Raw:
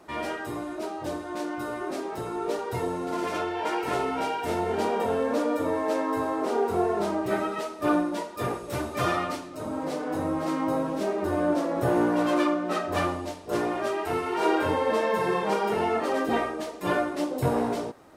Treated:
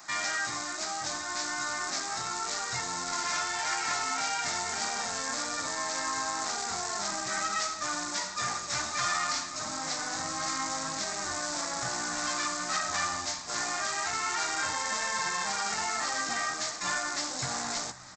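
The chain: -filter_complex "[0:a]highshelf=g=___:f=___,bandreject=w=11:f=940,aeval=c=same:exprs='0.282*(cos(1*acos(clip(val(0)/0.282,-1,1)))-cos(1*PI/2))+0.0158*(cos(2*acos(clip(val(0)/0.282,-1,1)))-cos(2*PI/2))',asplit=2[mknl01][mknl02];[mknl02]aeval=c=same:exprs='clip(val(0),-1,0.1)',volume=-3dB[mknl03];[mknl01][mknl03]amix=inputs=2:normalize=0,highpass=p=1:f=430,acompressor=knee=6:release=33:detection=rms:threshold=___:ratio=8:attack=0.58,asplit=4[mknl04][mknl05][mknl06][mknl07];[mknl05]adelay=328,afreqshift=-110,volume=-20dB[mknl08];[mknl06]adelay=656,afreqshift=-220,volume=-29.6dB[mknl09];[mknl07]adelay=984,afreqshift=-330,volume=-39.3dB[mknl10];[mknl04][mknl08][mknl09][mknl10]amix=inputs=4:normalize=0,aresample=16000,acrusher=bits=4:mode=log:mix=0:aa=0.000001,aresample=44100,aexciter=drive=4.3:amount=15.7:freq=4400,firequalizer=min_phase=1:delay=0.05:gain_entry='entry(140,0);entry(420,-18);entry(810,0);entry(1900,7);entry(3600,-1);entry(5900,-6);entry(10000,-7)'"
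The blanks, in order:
-7.5, 4700, -27dB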